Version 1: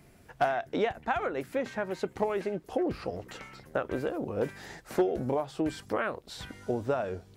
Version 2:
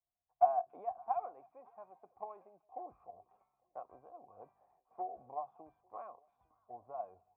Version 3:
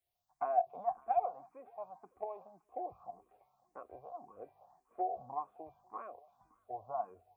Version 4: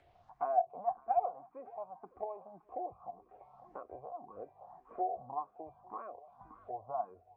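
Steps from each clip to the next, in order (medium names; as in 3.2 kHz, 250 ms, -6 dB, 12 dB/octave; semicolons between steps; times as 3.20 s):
cascade formant filter a; repeats whose band climbs or falls 284 ms, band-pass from 3.1 kHz, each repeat -1.4 oct, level -11 dB; three bands expanded up and down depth 70%; trim -3.5 dB
barber-pole phaser +1.8 Hz; trim +8.5 dB
upward compressor, threshold -41 dBFS; low-pass 1.6 kHz 12 dB/octave; trim +1 dB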